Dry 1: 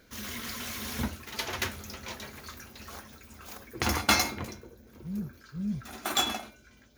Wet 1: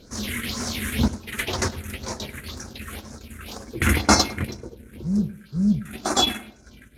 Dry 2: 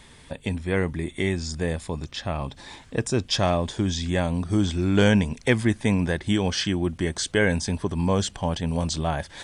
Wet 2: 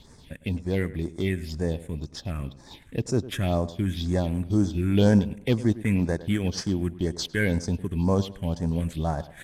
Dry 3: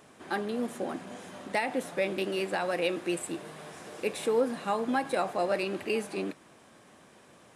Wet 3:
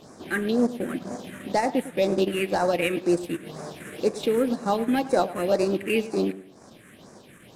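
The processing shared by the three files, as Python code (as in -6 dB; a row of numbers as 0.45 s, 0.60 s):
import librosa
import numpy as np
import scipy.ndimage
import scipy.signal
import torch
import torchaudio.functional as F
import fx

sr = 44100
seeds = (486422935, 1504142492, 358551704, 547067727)

y = fx.cvsd(x, sr, bps=64000)
y = fx.phaser_stages(y, sr, stages=4, low_hz=760.0, high_hz=3000.0, hz=2.0, feedback_pct=30)
y = fx.transient(y, sr, attack_db=-2, sustain_db=-8)
y = fx.echo_tape(y, sr, ms=104, feedback_pct=36, wet_db=-14.5, lp_hz=1700.0, drive_db=3.0, wow_cents=16)
y = y * 10.0 ** (-26 / 20.0) / np.sqrt(np.mean(np.square(y)))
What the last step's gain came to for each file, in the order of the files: +12.0 dB, -0.5 dB, +10.0 dB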